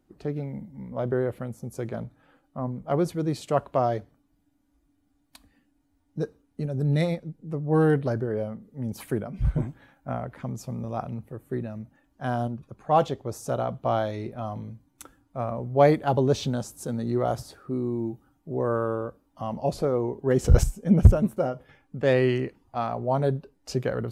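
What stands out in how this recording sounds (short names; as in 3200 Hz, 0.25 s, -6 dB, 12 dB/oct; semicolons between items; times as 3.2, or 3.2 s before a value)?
noise floor -69 dBFS; spectral tilt -6.5 dB/oct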